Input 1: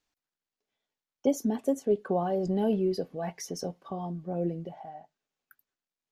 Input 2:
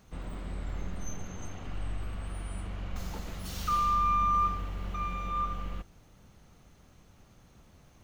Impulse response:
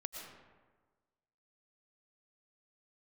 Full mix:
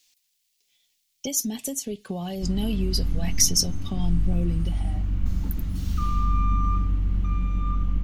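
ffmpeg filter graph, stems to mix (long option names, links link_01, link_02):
-filter_complex "[0:a]acompressor=threshold=-34dB:ratio=2,aexciter=amount=11:drive=3.1:freq=2100,volume=0dB[link_01];[1:a]equalizer=frequency=280:width=2.6:gain=10.5,adelay=2300,volume=-4dB[link_02];[link_01][link_02]amix=inputs=2:normalize=0,asubboost=boost=8:cutoff=190"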